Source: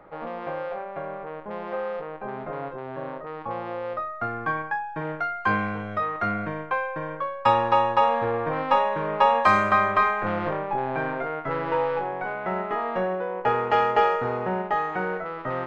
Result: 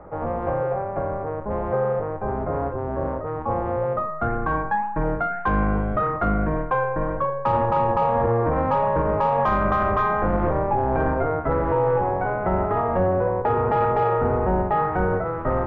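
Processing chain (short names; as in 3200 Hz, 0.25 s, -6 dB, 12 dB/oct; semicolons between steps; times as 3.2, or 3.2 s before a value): octaver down 2 oct, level +1 dB; LPF 1100 Hz 12 dB/oct; in parallel at -5 dB: soft clip -20 dBFS, distortion -12 dB; on the sum: flange 1.8 Hz, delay 0.4 ms, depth 6 ms, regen +88%; limiter -21.5 dBFS, peak gain reduction 10 dB; gain +8.5 dB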